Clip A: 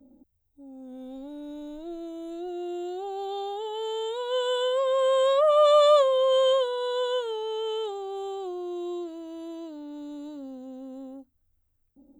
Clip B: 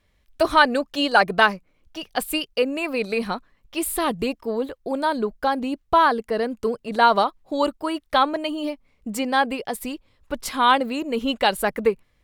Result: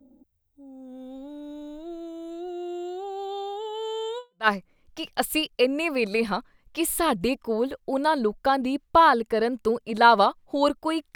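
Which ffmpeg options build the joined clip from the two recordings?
-filter_complex "[0:a]apad=whole_dur=11.15,atrim=end=11.15,atrim=end=4.48,asetpts=PTS-STARTPTS[a];[1:a]atrim=start=1.16:end=8.13,asetpts=PTS-STARTPTS[b];[a][b]acrossfade=d=0.3:c1=exp:c2=exp"

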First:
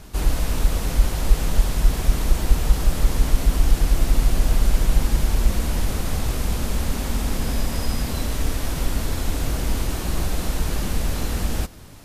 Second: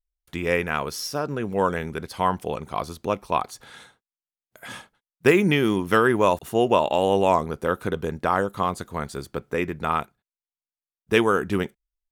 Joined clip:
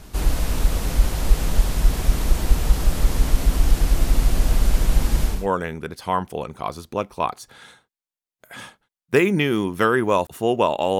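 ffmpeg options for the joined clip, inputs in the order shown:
-filter_complex "[0:a]apad=whole_dur=10.99,atrim=end=10.99,atrim=end=5.48,asetpts=PTS-STARTPTS[a];[1:a]atrim=start=1.36:end=7.11,asetpts=PTS-STARTPTS[b];[a][b]acrossfade=d=0.24:c1=tri:c2=tri"

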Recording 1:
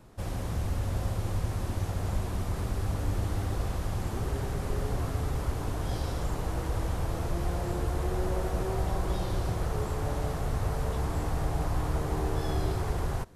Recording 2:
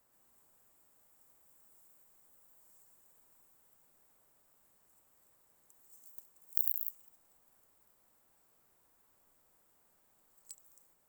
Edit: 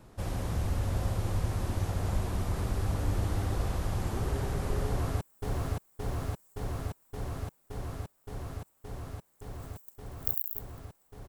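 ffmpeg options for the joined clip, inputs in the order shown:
-filter_complex "[0:a]apad=whole_dur=11.28,atrim=end=11.28,atrim=end=5.212[a];[1:a]atrim=start=1.508:end=7.58[b];[a][b]acrossfade=d=0.004:c1=hsin:c2=hsin,asplit=2[c][d];[d]afade=t=in:st=4.85:d=0.01,afade=t=out:st=5.21:d=0.01,aecho=0:1:570|1140|1710|2280|2850|3420|3990|4560|5130|5700|6270|6840:0.841395|0.715186|0.607908|0.516722|0.439214|0.373331|0.317332|0.269732|0.229272|0.194881|0.165649|0.140802[e];[c][e]amix=inputs=2:normalize=0"

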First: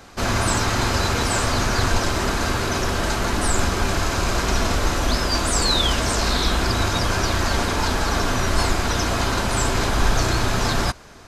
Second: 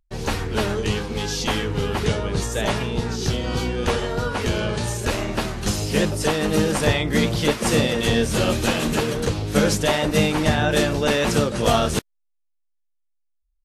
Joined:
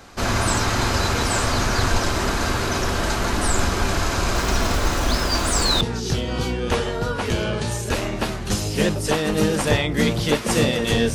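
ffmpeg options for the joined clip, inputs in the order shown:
-filter_complex "[0:a]asettb=1/sr,asplit=3[a][b][c];[a]atrim=end=4.364[d];[b]atrim=start=4.36:end=5.81,asetpts=PTS-STARTPTS,afade=t=in:d=0.004:c=qsin,afade=t=out:st=1.446:d=0.004:c=qsin,acrusher=bits=7:dc=4:mix=0:aa=0.000001[e];[c]atrim=start=5.806[f];[d][e]acrossfade=d=0.004:c1=hsin:c2=qsin[g];[g][f]acrossfade=d=0.004:c1=qsin:c2=hsin,apad=whole_dur=11.14,atrim=end=11.14,atrim=end=5.812[h];[1:a]atrim=start=2.968:end=8.3[i];[h][i]acrossfade=d=0.004:c1=hsin:c2=hsin"

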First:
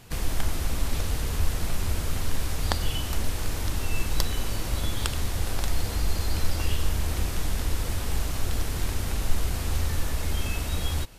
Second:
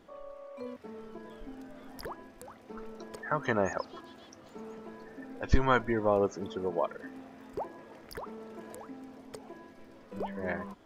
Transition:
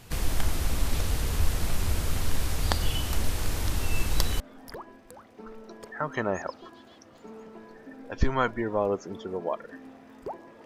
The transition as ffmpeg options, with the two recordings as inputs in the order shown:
-filter_complex "[0:a]apad=whole_dur=10.65,atrim=end=10.65,atrim=end=4.402[a];[1:a]atrim=start=1.708:end=7.96[b];[a][b]acrossfade=d=0.004:c1=hsin:c2=hsin"

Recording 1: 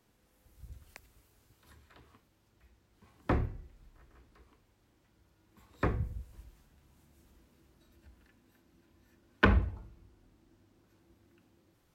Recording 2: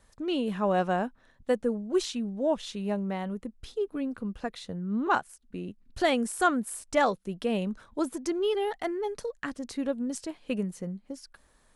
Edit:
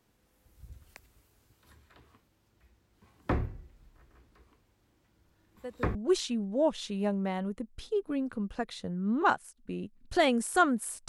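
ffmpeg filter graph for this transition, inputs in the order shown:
-filter_complex "[1:a]asplit=2[a][b];[0:a]apad=whole_dur=11.08,atrim=end=11.08,atrim=end=5.952[c];[b]atrim=start=1.798:end=6.93[d];[a]atrim=start=1.1:end=1.8,asetpts=PTS-STARTPTS,volume=-15.5dB,afade=t=in:d=0.004:c=hsin,afade=t=out:st=0.696:d=0.004:c=hsin,adelay=231525S[e];[c][d]acrossfade=d=0.004:c1=hsin:c2=hsin[f];[f][e]amix=inputs=2:normalize=0"

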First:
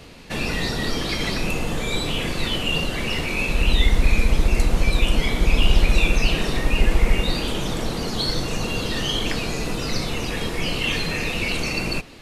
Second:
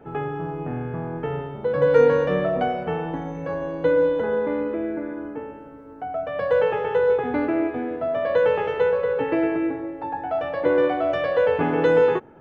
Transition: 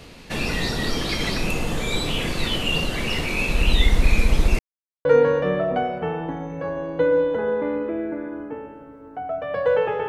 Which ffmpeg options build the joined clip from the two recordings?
-filter_complex "[0:a]apad=whole_dur=10.08,atrim=end=10.08,asplit=2[a][b];[a]atrim=end=4.59,asetpts=PTS-STARTPTS,afade=t=out:st=4.586:d=0.004:c=hsin[c];[b]atrim=start=4.59:end=5.05,asetpts=PTS-STARTPTS,volume=0[d];[1:a]atrim=start=1.9:end=6.93,asetpts=PTS-STARTPTS,afade=t=in:d=0.004:c=hsin[e];[c][d][e]concat=n=3:v=0:a=1"

